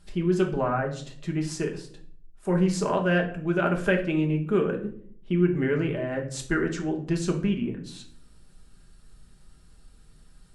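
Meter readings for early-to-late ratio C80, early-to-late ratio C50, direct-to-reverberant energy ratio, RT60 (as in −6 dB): 15.0 dB, 10.0 dB, 1.5 dB, 0.55 s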